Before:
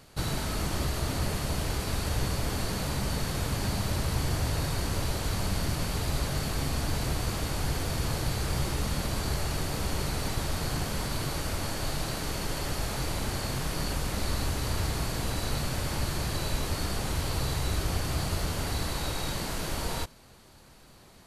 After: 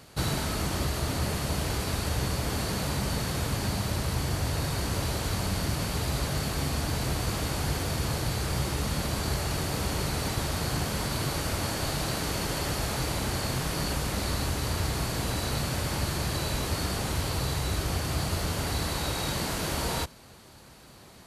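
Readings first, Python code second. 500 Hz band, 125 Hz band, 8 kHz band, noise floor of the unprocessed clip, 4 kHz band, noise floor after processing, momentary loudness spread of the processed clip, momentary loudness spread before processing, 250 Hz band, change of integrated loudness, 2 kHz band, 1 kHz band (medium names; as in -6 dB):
+2.0 dB, +1.5 dB, +2.0 dB, -54 dBFS, +2.0 dB, -51 dBFS, 0 LU, 2 LU, +2.0 dB, +1.5 dB, +2.0 dB, +2.0 dB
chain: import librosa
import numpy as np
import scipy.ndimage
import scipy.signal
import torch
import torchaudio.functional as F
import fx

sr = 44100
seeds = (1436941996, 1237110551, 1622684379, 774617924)

y = scipy.signal.sosfilt(scipy.signal.butter(2, 52.0, 'highpass', fs=sr, output='sos'), x)
y = fx.rider(y, sr, range_db=10, speed_s=0.5)
y = y * librosa.db_to_amplitude(2.0)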